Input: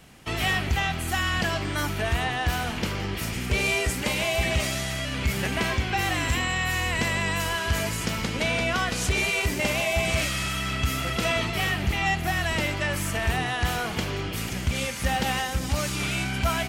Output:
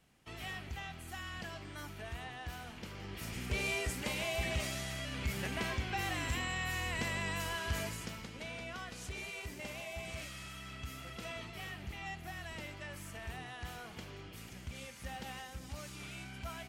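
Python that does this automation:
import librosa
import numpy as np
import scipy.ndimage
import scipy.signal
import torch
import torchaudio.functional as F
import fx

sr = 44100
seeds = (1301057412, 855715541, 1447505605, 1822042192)

y = fx.gain(x, sr, db=fx.line((2.86, -18.5), (3.38, -11.0), (7.82, -11.0), (8.29, -19.0)))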